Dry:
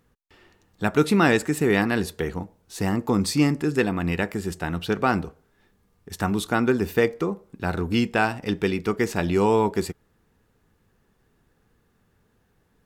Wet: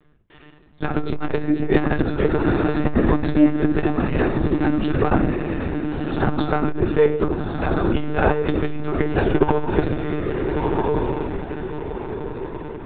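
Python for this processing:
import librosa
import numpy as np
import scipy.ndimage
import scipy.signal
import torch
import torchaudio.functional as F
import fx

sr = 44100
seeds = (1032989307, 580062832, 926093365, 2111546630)

y = fx.dynamic_eq(x, sr, hz=2500.0, q=1.1, threshold_db=-41.0, ratio=4.0, max_db=-7)
y = fx.echo_diffused(y, sr, ms=1357, feedback_pct=43, wet_db=-6)
y = fx.room_shoebox(y, sr, seeds[0], volume_m3=44.0, walls='mixed', distance_m=0.51)
y = fx.lpc_monotone(y, sr, seeds[1], pitch_hz=150.0, order=16)
y = fx.transformer_sat(y, sr, knee_hz=190.0)
y = y * librosa.db_to_amplitude(4.0)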